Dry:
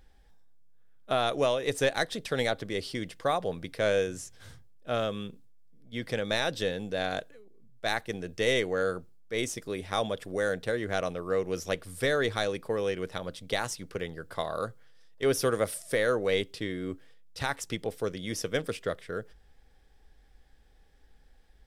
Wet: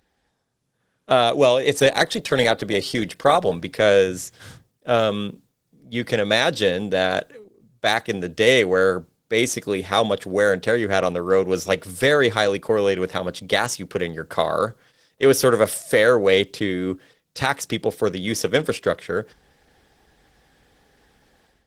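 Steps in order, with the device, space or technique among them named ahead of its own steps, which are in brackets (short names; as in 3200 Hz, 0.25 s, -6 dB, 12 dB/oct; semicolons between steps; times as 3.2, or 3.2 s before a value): 1.21–2.01 dynamic EQ 1400 Hz, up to -7 dB, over -47 dBFS, Q 3.6; video call (HPF 110 Hz 12 dB/oct; AGC gain up to 12.5 dB; Opus 16 kbps 48000 Hz)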